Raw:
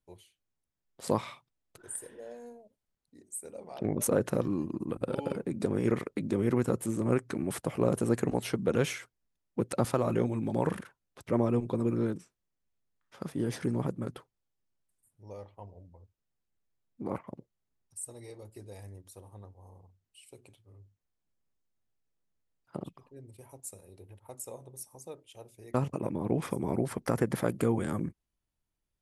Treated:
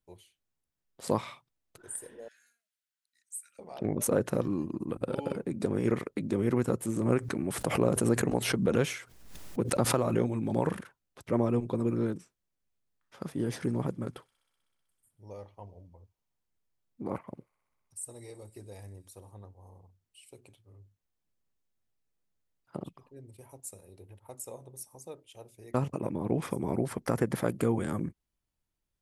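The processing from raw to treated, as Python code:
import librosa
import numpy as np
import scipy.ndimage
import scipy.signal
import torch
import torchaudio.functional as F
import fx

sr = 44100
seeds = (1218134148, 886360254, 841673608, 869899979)

y = fx.ellip_highpass(x, sr, hz=1400.0, order=4, stop_db=40, at=(2.28, 3.59))
y = fx.pre_swell(y, sr, db_per_s=64.0, at=(6.96, 10.61))
y = fx.echo_wet_highpass(y, sr, ms=63, feedback_pct=85, hz=2600.0, wet_db=-22.0, at=(13.57, 19.32))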